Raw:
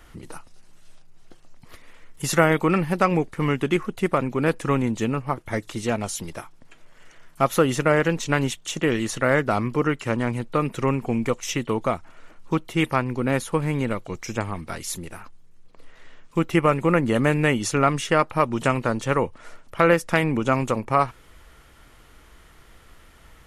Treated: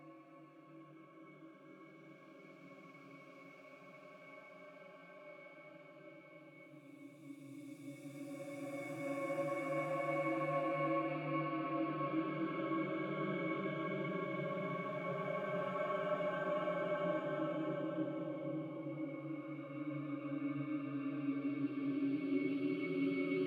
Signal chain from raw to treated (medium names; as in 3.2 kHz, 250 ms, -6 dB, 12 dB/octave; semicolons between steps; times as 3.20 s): frequency axis rescaled in octaves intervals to 111%; tilt EQ +1.5 dB/octave; pitch-class resonator C#, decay 0.15 s; reverse; compression, threshold -43 dBFS, peak gain reduction 20 dB; reverse; high-pass 230 Hz 24 dB/octave; treble shelf 7.9 kHz +8 dB; reverse echo 1135 ms -19.5 dB; Paulstretch 10×, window 0.50 s, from 1.40 s; trim +11 dB